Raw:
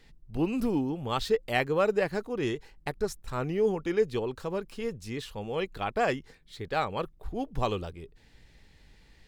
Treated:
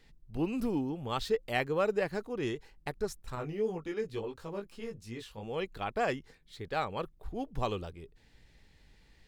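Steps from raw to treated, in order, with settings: 3.35–5.43 s: chorus 2.8 Hz, delay 17 ms, depth 2.8 ms; trim -4 dB

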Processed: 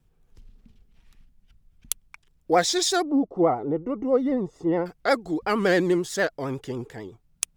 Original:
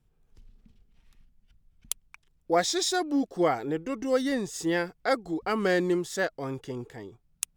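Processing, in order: vibrato 11 Hz 82 cents; 3.02–4.86 s: Savitzky-Golay filter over 65 samples; trim +4 dB

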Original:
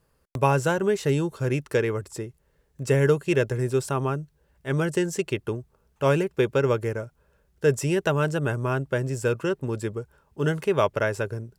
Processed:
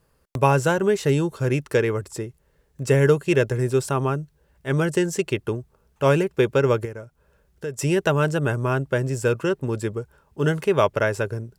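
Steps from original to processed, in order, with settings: 6.85–7.79 s: compression 2:1, threshold -41 dBFS, peak gain reduction 14 dB; trim +3 dB

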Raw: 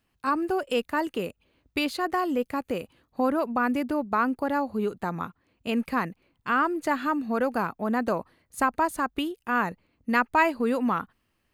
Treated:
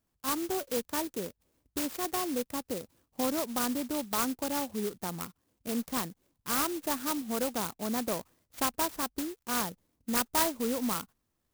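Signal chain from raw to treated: sampling jitter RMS 0.13 ms; trim -6 dB

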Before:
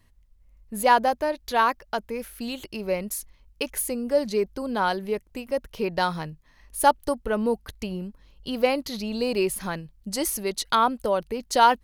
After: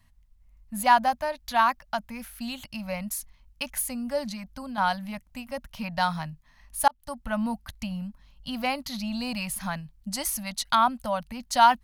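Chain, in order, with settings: Chebyshev band-stop 230–690 Hz, order 2; 4.31–4.78 s: compression, threshold -34 dBFS, peak gain reduction 7.5 dB; 6.88–7.28 s: fade in

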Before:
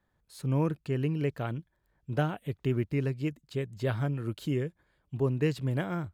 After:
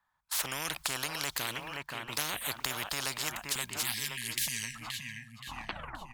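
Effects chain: tape stop on the ending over 1.78 s; spectral selection erased 3.35–4.75 s, 240–1600 Hz; dynamic bell 150 Hz, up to +4 dB, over -43 dBFS, Q 2.1; gate -56 dBFS, range -30 dB; in parallel at -3 dB: peak limiter -21 dBFS, peak gain reduction 5.5 dB; on the sum: resonant low shelf 650 Hz -13.5 dB, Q 3; on a send: feedback delay 524 ms, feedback 38%, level -20 dB; on the sum: spectrum-flattening compressor 10:1; trim +6.5 dB

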